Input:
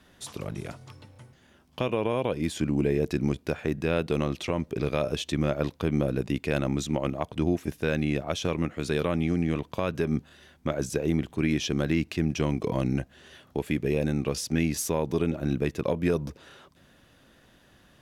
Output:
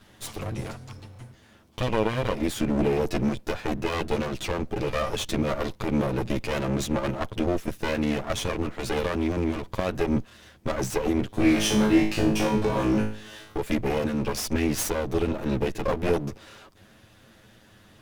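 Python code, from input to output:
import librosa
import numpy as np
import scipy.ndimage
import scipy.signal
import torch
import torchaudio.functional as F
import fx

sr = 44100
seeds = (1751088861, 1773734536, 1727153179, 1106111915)

y = fx.lower_of_two(x, sr, delay_ms=9.3)
y = fx.low_shelf(y, sr, hz=170.0, db=4.0)
y = fx.room_flutter(y, sr, wall_m=3.2, rt60_s=0.47, at=(11.3, 13.58))
y = y * 10.0 ** (4.5 / 20.0)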